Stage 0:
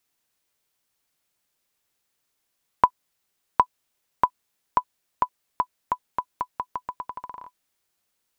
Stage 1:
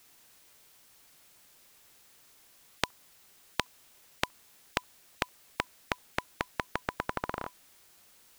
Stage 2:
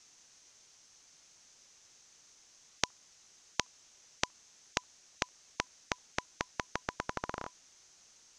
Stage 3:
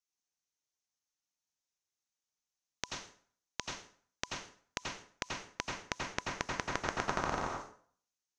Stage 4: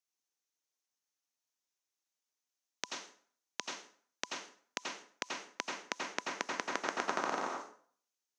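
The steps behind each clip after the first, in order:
spectral compressor 10:1; gain -1 dB
ladder low-pass 6700 Hz, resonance 70%; gain +7.5 dB
gate -48 dBFS, range -35 dB; limiter -16.5 dBFS, peak gain reduction 10 dB; plate-style reverb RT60 0.51 s, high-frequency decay 0.8×, pre-delay 75 ms, DRR -1.5 dB; gain +1.5 dB
HPF 230 Hz 24 dB/oct

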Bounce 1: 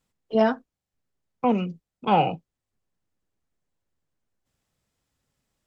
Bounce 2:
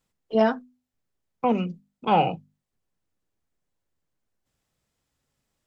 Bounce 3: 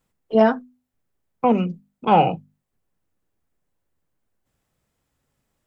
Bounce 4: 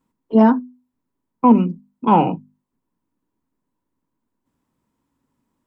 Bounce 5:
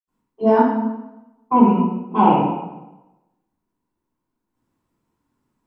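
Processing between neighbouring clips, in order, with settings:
notches 50/100/150/200/250 Hz
bell 4900 Hz -6 dB 1.8 oct; gain +5 dB
small resonant body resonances 260/960 Hz, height 16 dB, ringing for 25 ms; gain -5.5 dB
reverb RT60 1.0 s, pre-delay 76 ms; gain -5 dB

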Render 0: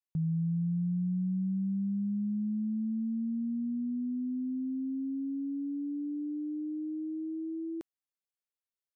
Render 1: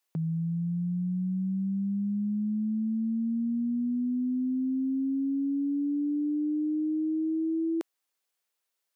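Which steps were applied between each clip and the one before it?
HPF 350 Hz 12 dB/oct; in parallel at -1 dB: vocal rider; on the sum: gain +6.5 dB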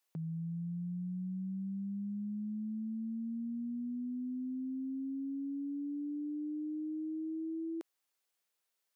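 limiter -34 dBFS, peak gain reduction 9.5 dB; gain -1.5 dB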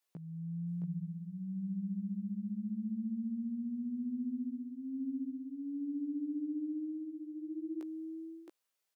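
echo 0.668 s -4 dB; chorus 0.25 Hz, delay 16 ms, depth 4.8 ms; gain +1 dB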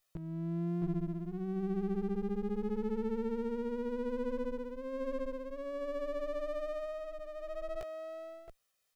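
minimum comb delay 1.6 ms; gain +6.5 dB

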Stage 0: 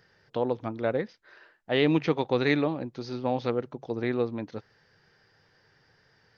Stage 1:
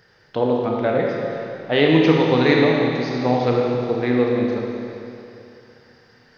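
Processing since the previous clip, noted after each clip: Schroeder reverb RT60 2.8 s, combs from 25 ms, DRR -1.5 dB; gain +6 dB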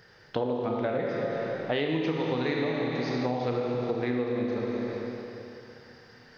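compressor 6:1, threshold -26 dBFS, peak gain reduction 16 dB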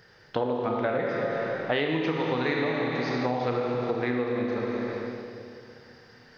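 dynamic EQ 1400 Hz, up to +6 dB, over -44 dBFS, Q 0.75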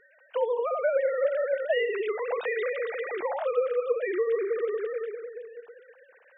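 sine-wave speech

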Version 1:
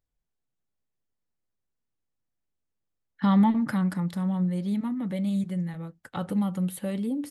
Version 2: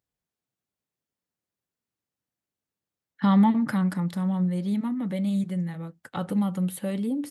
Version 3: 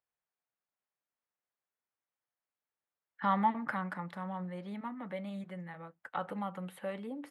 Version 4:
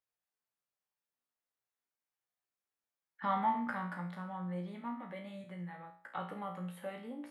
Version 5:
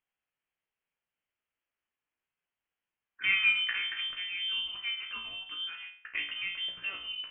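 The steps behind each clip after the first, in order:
HPF 100 Hz; gain +1.5 dB
three-band isolator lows -17 dB, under 560 Hz, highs -20 dB, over 2500 Hz
resonator 59 Hz, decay 0.49 s, harmonics all, mix 90%; gain +6 dB
inverted band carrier 3300 Hz; gain +5.5 dB

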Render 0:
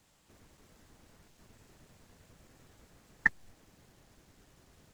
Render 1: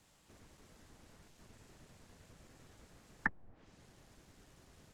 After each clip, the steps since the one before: treble ducked by the level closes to 970 Hz, closed at -35.5 dBFS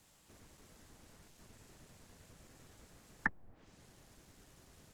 high shelf 8100 Hz +7.5 dB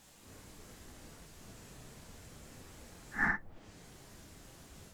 phase scrambler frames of 0.2 s; gain +7 dB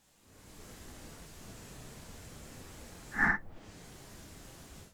AGC gain up to 11.5 dB; gain -8 dB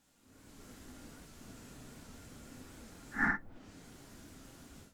small resonant body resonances 260/1400 Hz, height 9 dB; record warp 78 rpm, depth 100 cents; gain -4.5 dB

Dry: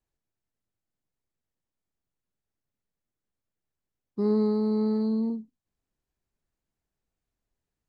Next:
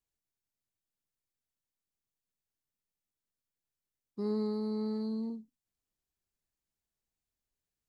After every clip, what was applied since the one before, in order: high shelf 2600 Hz +9.5 dB; gain -9 dB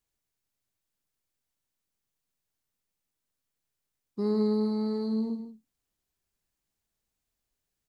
echo 0.155 s -10.5 dB; gain +5.5 dB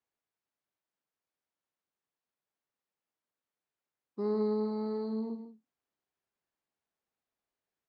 band-pass 800 Hz, Q 0.55

